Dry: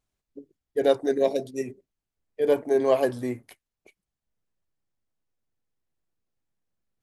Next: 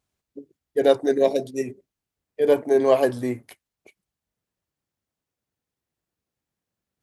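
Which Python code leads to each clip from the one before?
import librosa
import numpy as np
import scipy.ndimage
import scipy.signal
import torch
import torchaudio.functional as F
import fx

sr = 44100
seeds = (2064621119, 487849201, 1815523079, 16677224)

y = scipy.signal.sosfilt(scipy.signal.butter(2, 56.0, 'highpass', fs=sr, output='sos'), x)
y = y * 10.0 ** (3.5 / 20.0)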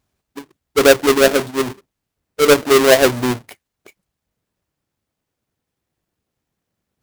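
y = fx.halfwave_hold(x, sr)
y = y * 10.0 ** (3.5 / 20.0)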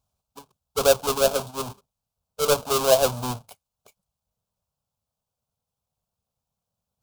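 y = fx.fixed_phaser(x, sr, hz=790.0, stages=4)
y = y * 10.0 ** (-4.0 / 20.0)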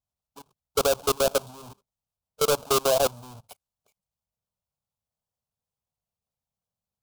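y = fx.level_steps(x, sr, step_db=24)
y = y * 10.0 ** (4.0 / 20.0)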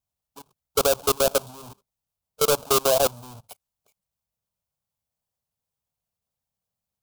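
y = fx.high_shelf(x, sr, hz=9400.0, db=5.0)
y = y * 10.0 ** (1.5 / 20.0)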